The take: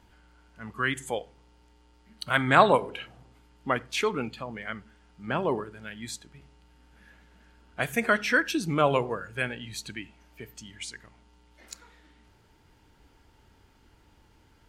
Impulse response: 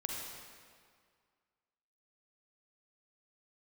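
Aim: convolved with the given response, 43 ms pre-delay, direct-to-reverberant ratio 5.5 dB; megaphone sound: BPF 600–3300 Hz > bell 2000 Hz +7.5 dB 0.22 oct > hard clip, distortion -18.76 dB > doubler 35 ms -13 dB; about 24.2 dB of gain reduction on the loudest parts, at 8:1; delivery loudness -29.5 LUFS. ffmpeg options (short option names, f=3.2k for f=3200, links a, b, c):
-filter_complex "[0:a]acompressor=threshold=-38dB:ratio=8,asplit=2[a][b];[1:a]atrim=start_sample=2205,adelay=43[c];[b][c]afir=irnorm=-1:irlink=0,volume=-7.5dB[d];[a][d]amix=inputs=2:normalize=0,highpass=600,lowpass=3.3k,equalizer=f=2k:t=o:w=0.22:g=7.5,asoftclip=type=hard:threshold=-32dB,asplit=2[e][f];[f]adelay=35,volume=-13dB[g];[e][g]amix=inputs=2:normalize=0,volume=15dB"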